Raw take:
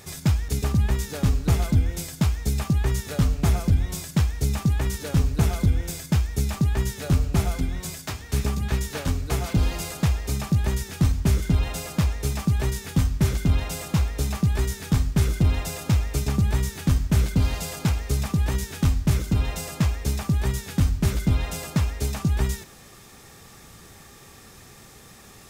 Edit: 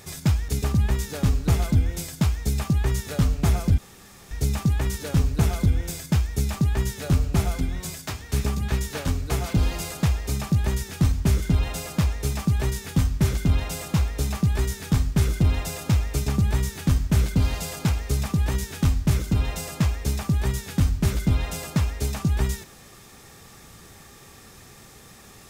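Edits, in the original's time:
0:03.78–0:04.31: fill with room tone

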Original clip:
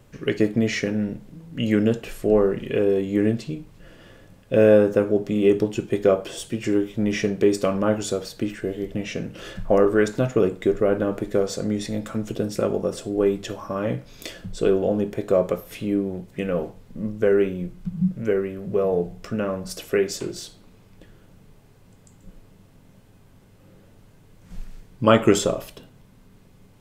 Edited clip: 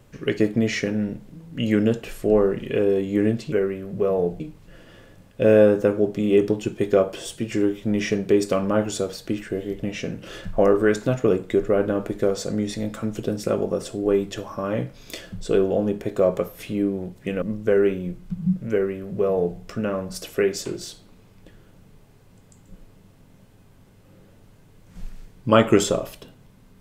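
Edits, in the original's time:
0:16.54–0:16.97: remove
0:18.26–0:19.14: duplicate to 0:03.52

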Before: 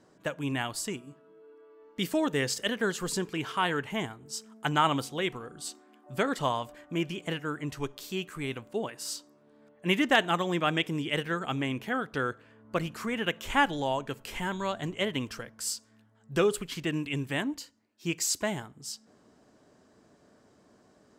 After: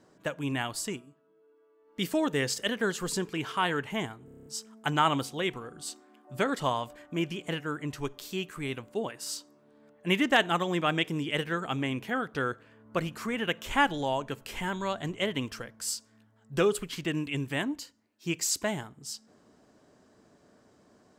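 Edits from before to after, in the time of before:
0:00.94–0:02.02: duck −9.5 dB, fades 0.17 s
0:04.25: stutter 0.03 s, 8 plays

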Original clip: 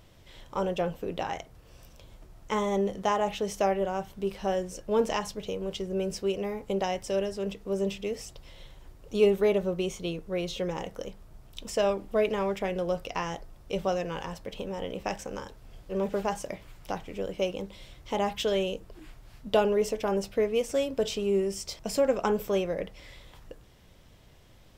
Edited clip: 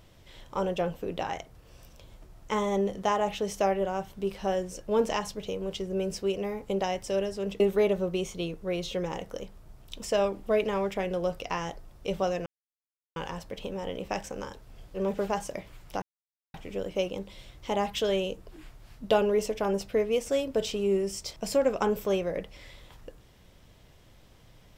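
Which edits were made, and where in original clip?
0:07.60–0:09.25: remove
0:14.11: splice in silence 0.70 s
0:16.97: splice in silence 0.52 s

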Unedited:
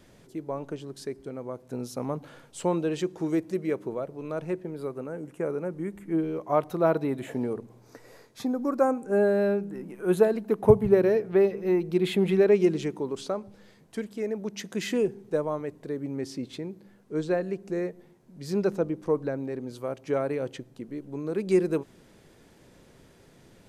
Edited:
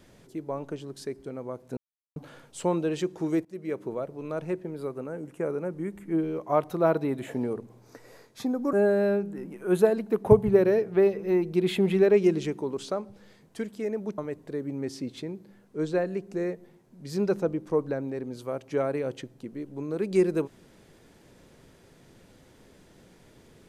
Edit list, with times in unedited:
0:01.77–0:02.16: silence
0:03.45–0:04.04: fade in equal-power, from −21.5 dB
0:08.73–0:09.11: remove
0:14.56–0:15.54: remove

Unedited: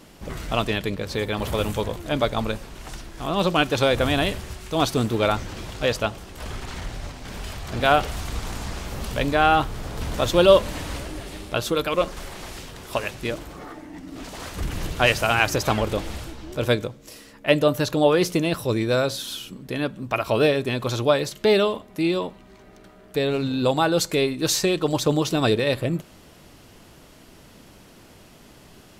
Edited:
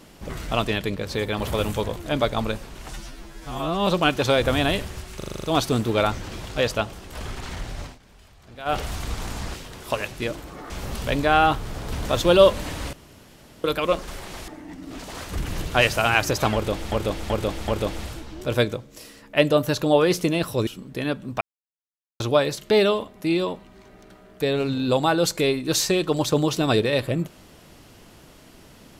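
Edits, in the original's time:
0:02.93–0:03.40: time-stretch 2×
0:04.69: stutter 0.04 s, 8 plays
0:07.12–0:08.02: duck −18 dB, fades 0.12 s
0:11.02–0:11.73: fill with room tone
0:12.57–0:13.73: move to 0:08.79
0:15.79–0:16.17: repeat, 4 plays
0:18.78–0:19.41: remove
0:20.15–0:20.94: silence

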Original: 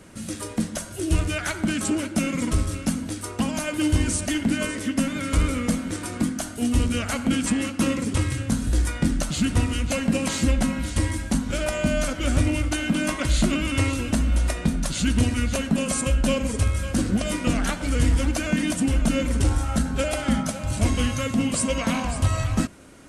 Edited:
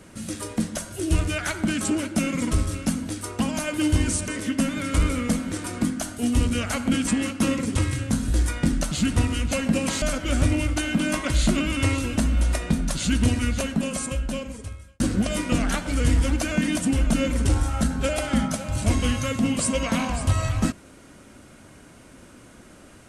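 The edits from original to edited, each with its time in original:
0:04.28–0:04.67: remove
0:10.41–0:11.97: remove
0:15.38–0:16.95: fade out linear

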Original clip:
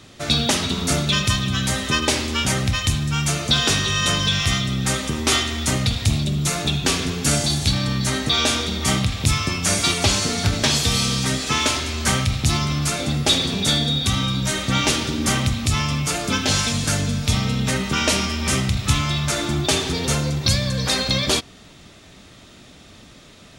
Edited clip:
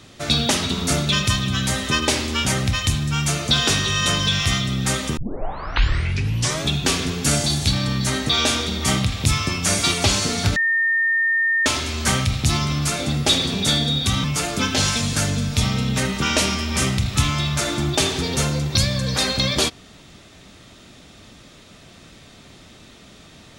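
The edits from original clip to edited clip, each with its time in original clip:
0:05.17: tape start 1.54 s
0:10.56–0:11.66: beep over 1,820 Hz −16 dBFS
0:14.24–0:15.95: remove

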